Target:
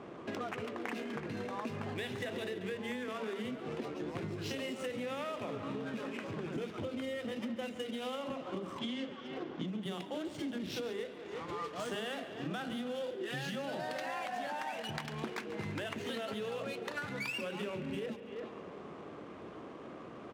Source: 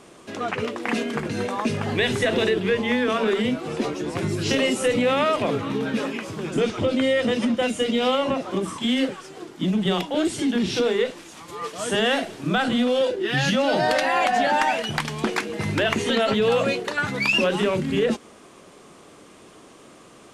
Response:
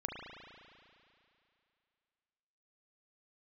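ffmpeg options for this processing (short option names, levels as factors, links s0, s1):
-filter_complex "[0:a]adynamicsmooth=sensitivity=7.5:basefreq=1700,asettb=1/sr,asplit=3[s0][s1][s2];[s0]atrim=end=8.794[s3];[s1]atrim=start=8.79:end=9.67,asetpts=PTS-STARTPTS,afade=t=in:d=0.004:c=qsin,afade=t=out:st=0.876:d=0.004:c=qsin,lowpass=f=6700:w=0.5412,lowpass=f=6700:w=1.3066[s4];[s2]atrim=start=9.666[s5];[s3][s4]acrossfade=d=0.004:c1=hsin:c2=qsin[s6];[s6][s5]acrossfade=d=0.004:c1=qsin:c2=hsin,asplit=2[s7][s8];[s8]adelay=340,highpass=300,lowpass=3400,asoftclip=type=hard:threshold=0.133,volume=0.126[s9];[s7][s9]amix=inputs=2:normalize=0,acompressor=threshold=0.0126:ratio=10,highpass=60,asplit=2[s10][s11];[1:a]atrim=start_sample=2205,adelay=140[s12];[s11][s12]afir=irnorm=-1:irlink=0,volume=0.237[s13];[s10][s13]amix=inputs=2:normalize=0,volume=1.12"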